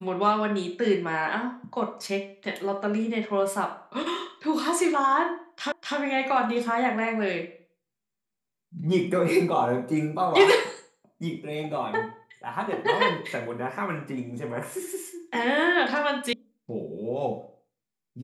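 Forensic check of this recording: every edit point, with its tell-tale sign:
0:05.72: the same again, the last 0.25 s
0:16.33: cut off before it has died away

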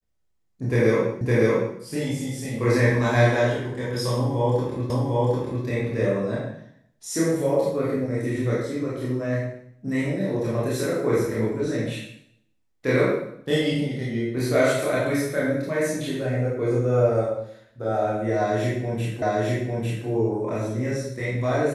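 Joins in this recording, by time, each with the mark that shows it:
0:01.21: the same again, the last 0.56 s
0:04.90: the same again, the last 0.75 s
0:19.22: the same again, the last 0.85 s

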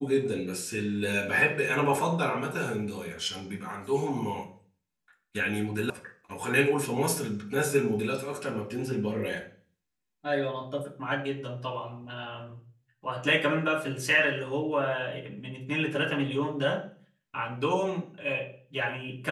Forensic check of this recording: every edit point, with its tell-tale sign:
0:05.90: cut off before it has died away

